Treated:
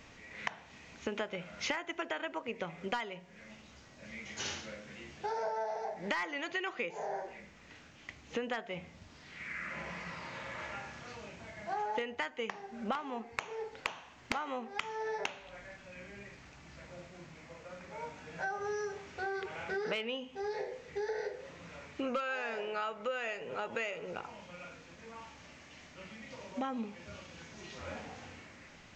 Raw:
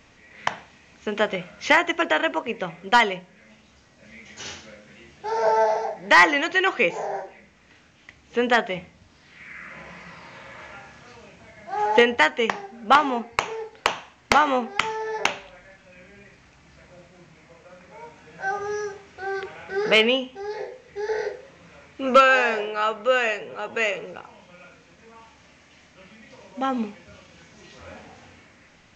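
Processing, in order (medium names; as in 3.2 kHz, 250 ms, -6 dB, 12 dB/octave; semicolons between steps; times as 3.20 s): compression 8:1, threshold -33 dBFS, peak gain reduction 22 dB; trim -1 dB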